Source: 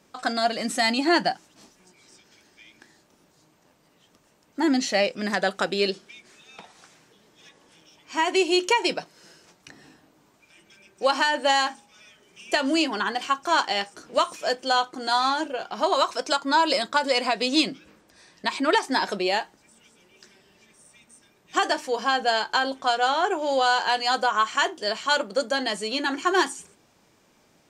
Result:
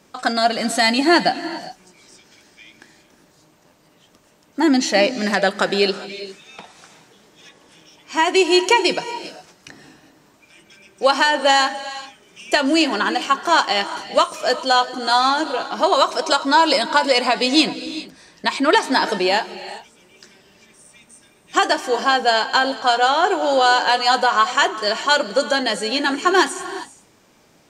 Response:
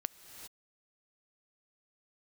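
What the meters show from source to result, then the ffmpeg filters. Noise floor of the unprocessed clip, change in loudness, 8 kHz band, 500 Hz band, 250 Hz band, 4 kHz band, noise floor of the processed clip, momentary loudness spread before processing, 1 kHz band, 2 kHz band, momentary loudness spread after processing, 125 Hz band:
−62 dBFS, +6.0 dB, +6.5 dB, +6.5 dB, +6.5 dB, +6.5 dB, −55 dBFS, 7 LU, +6.5 dB, +6.0 dB, 14 LU, can't be measured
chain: -filter_complex "[0:a]asplit=2[link_01][link_02];[1:a]atrim=start_sample=2205[link_03];[link_02][link_03]afir=irnorm=-1:irlink=0,volume=3.5dB[link_04];[link_01][link_04]amix=inputs=2:normalize=0,volume=-1dB"

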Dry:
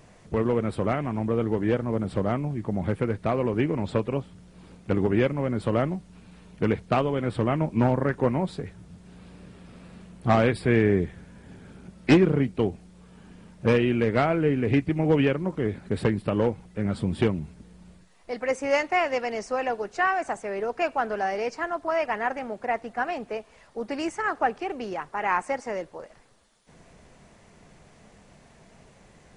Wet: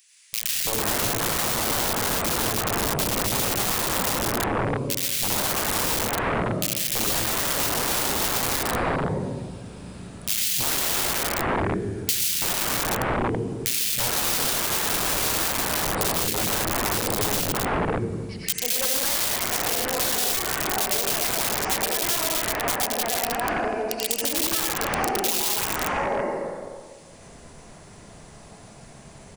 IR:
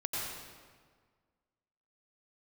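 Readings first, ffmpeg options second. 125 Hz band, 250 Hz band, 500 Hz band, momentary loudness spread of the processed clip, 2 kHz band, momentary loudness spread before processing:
−4.0 dB, −5.0 dB, −3.0 dB, 5 LU, +3.5 dB, 10 LU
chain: -filter_complex "[1:a]atrim=start_sample=2205[link_01];[0:a][link_01]afir=irnorm=-1:irlink=0,aeval=exprs='(mod(8.41*val(0)+1,2)-1)/8.41':channel_layout=same,crystalizer=i=1.5:c=0,acrossover=split=2200[link_02][link_03];[link_02]adelay=330[link_04];[link_04][link_03]amix=inputs=2:normalize=0,acompressor=threshold=-24dB:ratio=3,volume=3dB"

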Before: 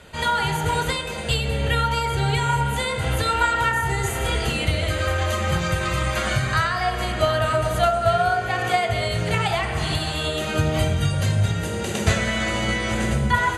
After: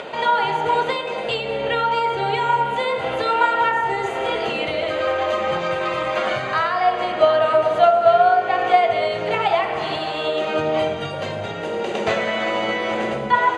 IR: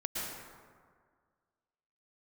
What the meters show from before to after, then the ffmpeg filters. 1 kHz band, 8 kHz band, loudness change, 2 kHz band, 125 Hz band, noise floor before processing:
+5.0 dB, below −10 dB, +2.0 dB, 0.0 dB, −14.0 dB, −27 dBFS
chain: -af "equalizer=frequency=1600:width=1.4:gain=-9,acompressor=mode=upward:threshold=-26dB:ratio=2.5,highpass=460,lowpass=2100,volume=9dB"

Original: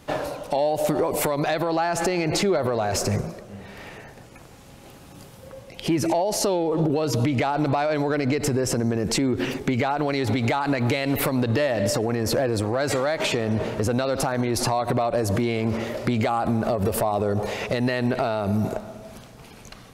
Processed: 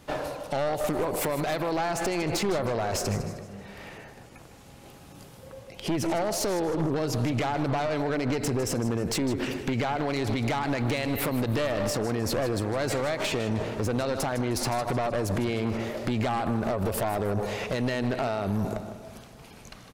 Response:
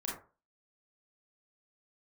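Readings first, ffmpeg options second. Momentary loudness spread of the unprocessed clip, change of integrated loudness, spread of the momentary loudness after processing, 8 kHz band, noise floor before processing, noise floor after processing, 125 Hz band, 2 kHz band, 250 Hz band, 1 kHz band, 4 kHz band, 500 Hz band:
7 LU, −4.5 dB, 14 LU, −4.5 dB, −46 dBFS, −49 dBFS, −4.0 dB, −4.0 dB, −4.5 dB, −4.5 dB, −4.0 dB, −5.0 dB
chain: -af "aecho=1:1:155|310|465|620:0.237|0.0901|0.0342|0.013,aeval=exprs='0.266*(cos(1*acos(clip(val(0)/0.266,-1,1)))-cos(1*PI/2))+0.0473*(cos(3*acos(clip(val(0)/0.266,-1,1)))-cos(3*PI/2))+0.0376*(cos(5*acos(clip(val(0)/0.266,-1,1)))-cos(5*PI/2))+0.0473*(cos(6*acos(clip(val(0)/0.266,-1,1)))-cos(6*PI/2))+0.0266*(cos(8*acos(clip(val(0)/0.266,-1,1)))-cos(8*PI/2))':channel_layout=same,volume=-4.5dB"

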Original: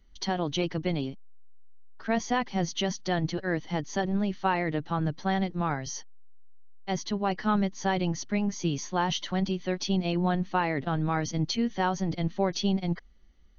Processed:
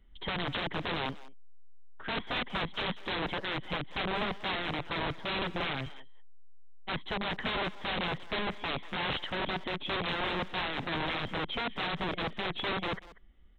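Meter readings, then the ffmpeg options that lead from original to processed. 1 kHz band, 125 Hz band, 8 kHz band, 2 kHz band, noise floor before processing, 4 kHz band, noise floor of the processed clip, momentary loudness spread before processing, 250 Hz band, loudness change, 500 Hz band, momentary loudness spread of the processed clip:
−4.5 dB, −10.0 dB, can't be measured, +1.5 dB, −52 dBFS, +2.0 dB, −50 dBFS, 5 LU, −11.0 dB, −4.5 dB, −5.5 dB, 4 LU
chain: -filter_complex "[0:a]aresample=8000,aeval=exprs='(mod(22.4*val(0)+1,2)-1)/22.4':channel_layout=same,aresample=44100,asplit=2[link_01][link_02];[link_02]adelay=190,highpass=300,lowpass=3400,asoftclip=type=hard:threshold=-31dB,volume=-16dB[link_03];[link_01][link_03]amix=inputs=2:normalize=0"

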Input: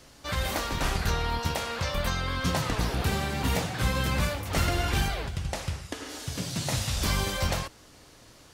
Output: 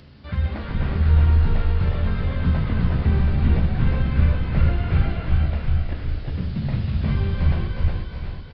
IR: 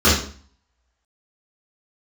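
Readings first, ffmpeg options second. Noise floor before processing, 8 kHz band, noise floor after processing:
−54 dBFS, below −35 dB, −35 dBFS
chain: -filter_complex "[0:a]asplit=2[link_01][link_02];[link_02]aecho=0:1:372|744|1116|1488|1860:0.501|0.221|0.097|0.0427|0.0188[link_03];[link_01][link_03]amix=inputs=2:normalize=0,acompressor=mode=upward:threshold=-41dB:ratio=2.5,equalizer=frequency=960:width_type=o:width=2.7:gain=-7,aresample=11025,aresample=44100,highpass=frequency=170:poles=1,bass=frequency=250:gain=13,treble=frequency=4000:gain=-10,asplit=2[link_04][link_05];[1:a]atrim=start_sample=2205[link_06];[link_05][link_06]afir=irnorm=-1:irlink=0,volume=-34.5dB[link_07];[link_04][link_07]amix=inputs=2:normalize=0,acrossover=split=2700[link_08][link_09];[link_09]acompressor=threshold=-54dB:ratio=4:attack=1:release=60[link_10];[link_08][link_10]amix=inputs=2:normalize=0,asplit=6[link_11][link_12][link_13][link_14][link_15][link_16];[link_12]adelay=358,afreqshift=-52,volume=-4dB[link_17];[link_13]adelay=716,afreqshift=-104,volume=-12.6dB[link_18];[link_14]adelay=1074,afreqshift=-156,volume=-21.3dB[link_19];[link_15]adelay=1432,afreqshift=-208,volume=-29.9dB[link_20];[link_16]adelay=1790,afreqshift=-260,volume=-38.5dB[link_21];[link_11][link_17][link_18][link_19][link_20][link_21]amix=inputs=6:normalize=0"

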